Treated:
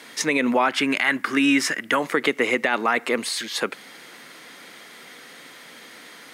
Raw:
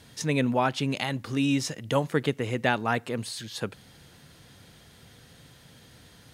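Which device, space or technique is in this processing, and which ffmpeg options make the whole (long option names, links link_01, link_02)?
laptop speaker: -filter_complex "[0:a]highpass=frequency=250:width=0.5412,highpass=frequency=250:width=1.3066,equalizer=frequency=1200:width_type=o:width=0.56:gain=6,equalizer=frequency=2100:width_type=o:width=0.4:gain=10,alimiter=limit=-18.5dB:level=0:latency=1:release=77,asettb=1/sr,asplit=3[link_01][link_02][link_03];[link_01]atrim=end=0.714[link_04];[link_02]atrim=start=0.71:end=2,asetpts=PTS-STARTPTS,afade=type=in:duration=0.004:curve=qsin,afade=type=out:start_time=1.286:duration=0.004:curve=qsin,equalizer=frequency=500:width_type=o:width=0.33:gain=-8,equalizer=frequency=800:width_type=o:width=0.33:gain=-3,equalizer=frequency=1600:width_type=o:width=0.33:gain=10,equalizer=frequency=4000:width_type=o:width=0.33:gain=-5,equalizer=frequency=6300:width_type=o:width=0.33:gain=-4[link_05];[link_03]atrim=start=1.996[link_06];[link_04][link_05]acrossfade=duration=0.004:curve1=hsin:curve2=qsin[link_07];[link_07][link_06]acrossfade=duration=0.004:curve1=qsin:curve2=hsin,volume=9dB"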